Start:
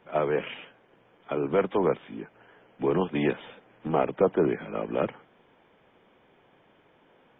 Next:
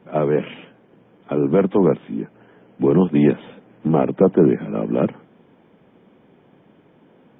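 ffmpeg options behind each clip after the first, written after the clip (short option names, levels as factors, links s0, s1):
-af "equalizer=f=200:w=0.54:g=14.5"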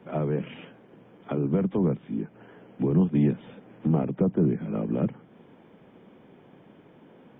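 -filter_complex "[0:a]acrossover=split=190[s0][s1];[s1]acompressor=threshold=0.02:ratio=2.5[s2];[s0][s2]amix=inputs=2:normalize=0"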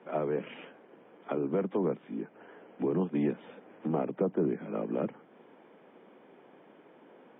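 -af "highpass=340,lowpass=2900"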